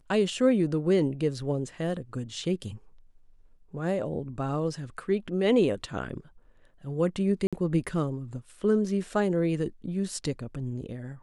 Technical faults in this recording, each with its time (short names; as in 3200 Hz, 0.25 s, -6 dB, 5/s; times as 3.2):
7.47–7.53 gap 56 ms